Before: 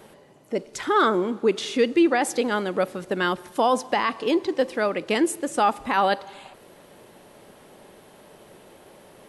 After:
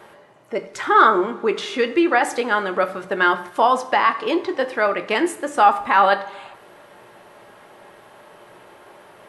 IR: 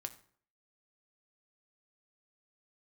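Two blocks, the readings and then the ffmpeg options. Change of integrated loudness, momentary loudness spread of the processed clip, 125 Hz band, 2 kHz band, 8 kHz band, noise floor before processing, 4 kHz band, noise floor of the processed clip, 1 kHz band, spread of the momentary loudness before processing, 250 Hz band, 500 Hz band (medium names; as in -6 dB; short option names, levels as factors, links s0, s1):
+4.5 dB, 9 LU, no reading, +7.5 dB, -2.5 dB, -51 dBFS, +2.0 dB, -48 dBFS, +7.0 dB, 7 LU, 0.0 dB, +2.0 dB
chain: -filter_complex "[0:a]equalizer=f=1300:t=o:w=2.6:g=12.5[s0];[1:a]atrim=start_sample=2205[s1];[s0][s1]afir=irnorm=-1:irlink=0,volume=0.891"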